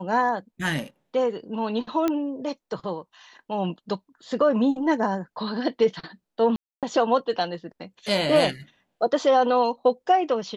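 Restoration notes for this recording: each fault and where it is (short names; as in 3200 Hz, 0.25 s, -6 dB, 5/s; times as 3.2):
2.08 pop -12 dBFS
6.56–6.83 gap 0.267 s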